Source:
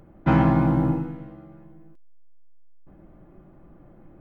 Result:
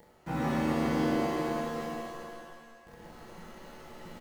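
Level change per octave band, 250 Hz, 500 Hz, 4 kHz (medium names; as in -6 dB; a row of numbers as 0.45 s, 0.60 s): -7.0 dB, -1.0 dB, no reading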